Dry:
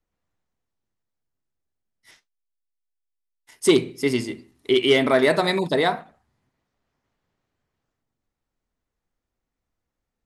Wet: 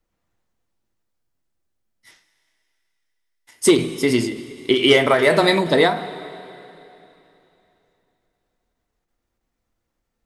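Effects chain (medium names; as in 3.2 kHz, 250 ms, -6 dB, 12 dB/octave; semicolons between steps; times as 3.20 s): 4.92–5.32 s: fifteen-band graphic EQ 100 Hz +3 dB, 250 Hz -10 dB, 4 kHz -5 dB; two-slope reverb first 0.2 s, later 3.1 s, from -18 dB, DRR 7.5 dB; endings held to a fixed fall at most 110 dB/s; trim +5.5 dB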